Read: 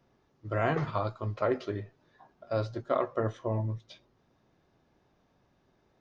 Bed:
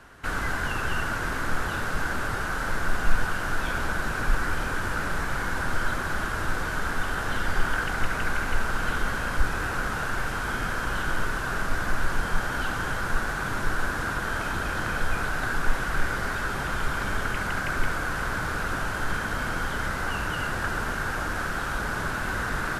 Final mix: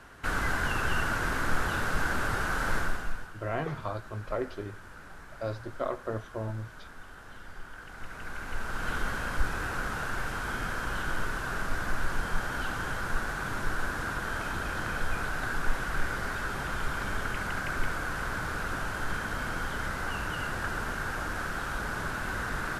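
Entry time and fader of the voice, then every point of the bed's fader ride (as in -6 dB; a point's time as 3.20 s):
2.90 s, -4.0 dB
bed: 2.78 s -1 dB
3.33 s -19.5 dB
7.74 s -19.5 dB
8.94 s -4.5 dB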